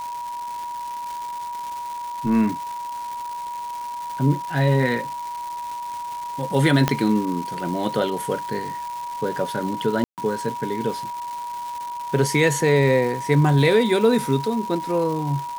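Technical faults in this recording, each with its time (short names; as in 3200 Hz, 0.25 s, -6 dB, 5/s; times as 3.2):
crackle 560/s -30 dBFS
tone 960 Hz -28 dBFS
6.88 pop -4 dBFS
10.04–10.18 gap 0.138 s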